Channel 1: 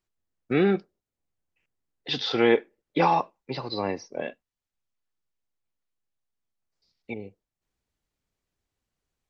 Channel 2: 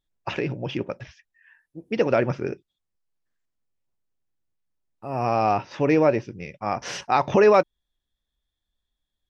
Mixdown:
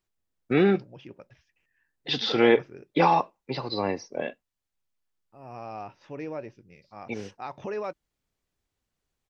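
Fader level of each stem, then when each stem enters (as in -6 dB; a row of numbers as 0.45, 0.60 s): +1.0, -17.0 dB; 0.00, 0.30 s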